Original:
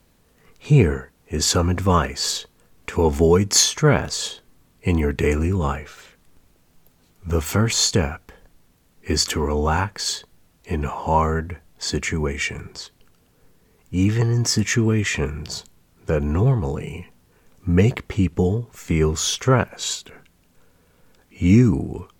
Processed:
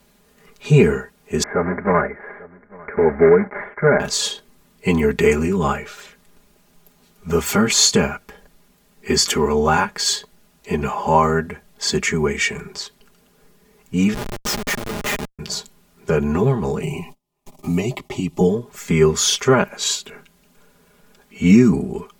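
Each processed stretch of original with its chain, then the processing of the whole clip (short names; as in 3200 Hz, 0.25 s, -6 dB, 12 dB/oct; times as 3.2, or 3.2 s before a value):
1.43–4 block floating point 3-bit + rippled Chebyshev low-pass 2200 Hz, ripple 6 dB + echo 0.848 s -23.5 dB
14.14–15.39 bell 190 Hz -14 dB 2.2 oct + Schmitt trigger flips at -23 dBFS
16.82–18.41 gate -51 dBFS, range -34 dB + fixed phaser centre 310 Hz, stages 8 + three-band squash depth 70%
whole clip: low shelf 120 Hz -8 dB; comb 4.9 ms, depth 80%; maximiser +4 dB; gain -1 dB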